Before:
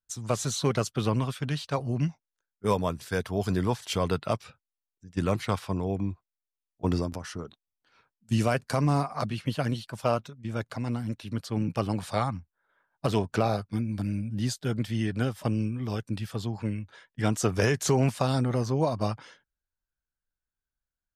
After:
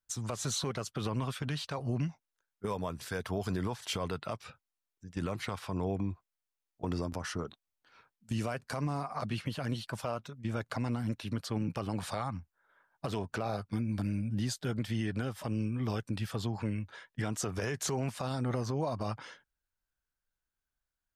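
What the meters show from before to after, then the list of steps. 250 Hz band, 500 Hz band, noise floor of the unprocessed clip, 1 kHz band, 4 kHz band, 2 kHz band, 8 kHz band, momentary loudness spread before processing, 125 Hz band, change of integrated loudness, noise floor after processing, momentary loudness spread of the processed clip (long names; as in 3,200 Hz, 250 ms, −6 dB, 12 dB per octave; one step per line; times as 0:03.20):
−6.0 dB, −8.0 dB, below −85 dBFS, −7.0 dB, −4.0 dB, −5.5 dB, −4.0 dB, 8 LU, −6.5 dB, −6.5 dB, below −85 dBFS, 6 LU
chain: parametric band 1,200 Hz +3 dB 2.3 octaves
downward compressor, threshold −28 dBFS, peak gain reduction 10.5 dB
brickwall limiter −24 dBFS, peak gain reduction 8 dB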